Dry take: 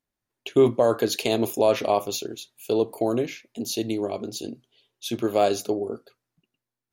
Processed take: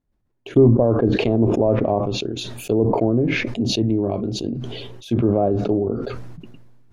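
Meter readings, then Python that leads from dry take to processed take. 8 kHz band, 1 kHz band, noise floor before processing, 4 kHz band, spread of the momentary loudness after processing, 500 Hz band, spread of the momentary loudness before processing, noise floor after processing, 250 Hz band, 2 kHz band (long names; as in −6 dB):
−3.5 dB, +0.5 dB, below −85 dBFS, +2.5 dB, 13 LU, +3.0 dB, 15 LU, −69 dBFS, +8.5 dB, +6.5 dB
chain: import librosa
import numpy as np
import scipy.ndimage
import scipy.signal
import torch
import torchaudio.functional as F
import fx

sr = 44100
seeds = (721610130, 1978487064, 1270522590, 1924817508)

y = fx.tilt_eq(x, sr, slope=-4.0)
y = fx.env_lowpass_down(y, sr, base_hz=790.0, full_db=-14.0)
y = fx.dynamic_eq(y, sr, hz=460.0, q=1.4, threshold_db=-25.0, ratio=4.0, max_db=-3)
y = fx.sustainer(y, sr, db_per_s=28.0)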